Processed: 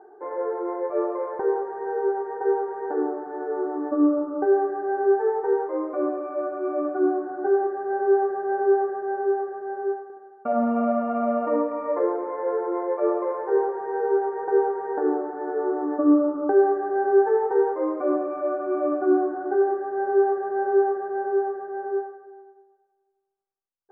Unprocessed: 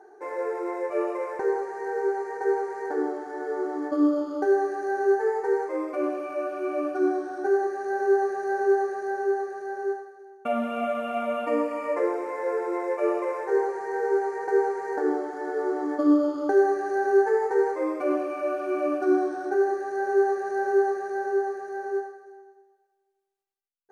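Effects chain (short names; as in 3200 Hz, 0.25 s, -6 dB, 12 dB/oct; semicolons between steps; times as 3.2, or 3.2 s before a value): LPF 1400 Hz 24 dB/oct; 10.03–11.56 flutter echo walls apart 11.7 m, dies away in 0.97 s; gain +2 dB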